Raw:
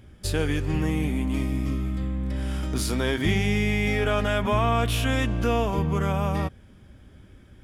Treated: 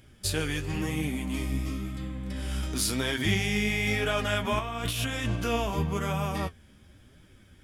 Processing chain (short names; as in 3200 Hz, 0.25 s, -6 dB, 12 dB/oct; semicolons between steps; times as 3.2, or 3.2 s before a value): high shelf 2100 Hz +9.5 dB; 4.59–5.36 negative-ratio compressor -24 dBFS, ratio -0.5; flange 0.97 Hz, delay 5.8 ms, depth 9.4 ms, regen +42%; gain -1.5 dB